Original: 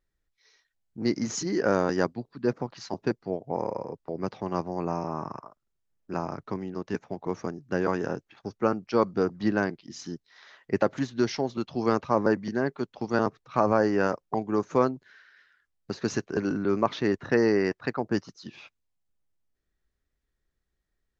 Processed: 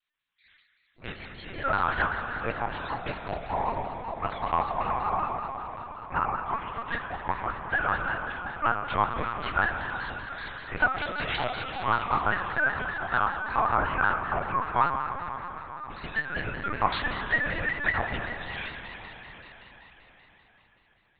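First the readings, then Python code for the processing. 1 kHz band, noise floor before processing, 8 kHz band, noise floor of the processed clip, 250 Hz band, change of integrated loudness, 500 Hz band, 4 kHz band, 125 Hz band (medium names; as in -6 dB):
+6.0 dB, -80 dBFS, no reading, -65 dBFS, -12.5 dB, -0.5 dB, -9.0 dB, +3.0 dB, -3.0 dB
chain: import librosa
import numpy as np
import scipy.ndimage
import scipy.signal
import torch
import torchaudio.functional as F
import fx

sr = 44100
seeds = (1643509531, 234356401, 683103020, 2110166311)

p1 = fx.spec_quant(x, sr, step_db=30)
p2 = scipy.signal.sosfilt(scipy.signal.butter(2, 1200.0, 'highpass', fs=sr, output='sos'), p1)
p3 = fx.rider(p2, sr, range_db=3, speed_s=0.5)
p4 = fx.doubler(p3, sr, ms=23.0, db=-8)
p5 = p4 + fx.echo_feedback(p4, sr, ms=358, feedback_pct=41, wet_db=-16.5, dry=0)
p6 = fx.rev_plate(p5, sr, seeds[0], rt60_s=4.9, hf_ratio=1.0, predelay_ms=0, drr_db=3.0)
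p7 = fx.lpc_vocoder(p6, sr, seeds[1], excitation='pitch_kept', order=10)
p8 = fx.vibrato_shape(p7, sr, shape='square', rate_hz=5.2, depth_cents=100.0)
y = p8 * librosa.db_to_amplitude(8.0)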